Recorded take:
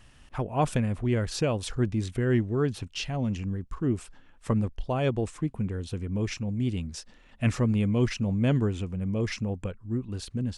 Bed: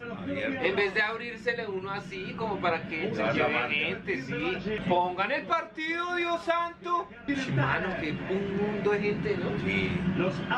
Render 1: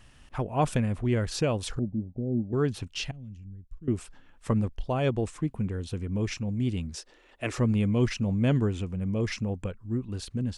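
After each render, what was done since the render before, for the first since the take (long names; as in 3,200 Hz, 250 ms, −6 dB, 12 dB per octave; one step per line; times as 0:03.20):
0:01.79–0:02.53: Chebyshev low-pass with heavy ripple 820 Hz, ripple 9 dB
0:03.11–0:03.88: guitar amp tone stack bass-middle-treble 10-0-1
0:06.96–0:07.58: low shelf with overshoot 270 Hz −10 dB, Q 3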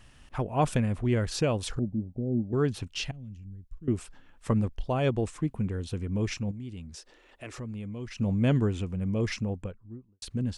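0:06.51–0:08.18: downward compressor 2 to 1, threshold −45 dBFS
0:09.32–0:10.22: fade out and dull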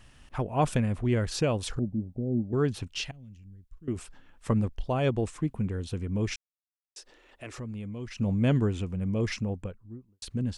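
0:03.01–0:03.96: low-shelf EQ 460 Hz −6 dB
0:06.36–0:06.96: silence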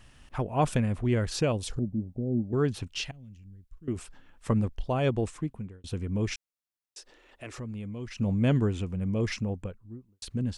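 0:01.52–0:01.94: parametric band 1,400 Hz −8.5 dB 1.7 octaves
0:05.28–0:05.84: fade out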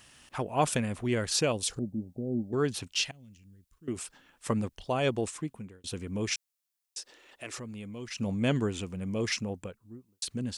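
high-pass filter 230 Hz 6 dB per octave
high-shelf EQ 3,500 Hz +9.5 dB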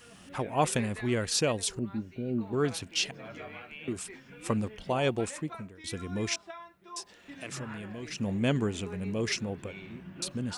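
mix in bed −17.5 dB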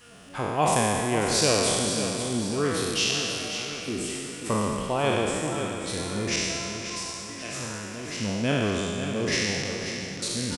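peak hold with a decay on every bin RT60 2.20 s
repeating echo 539 ms, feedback 47%, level −9 dB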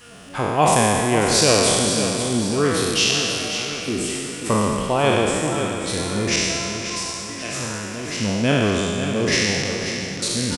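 level +6.5 dB
brickwall limiter −1 dBFS, peak gain reduction 2 dB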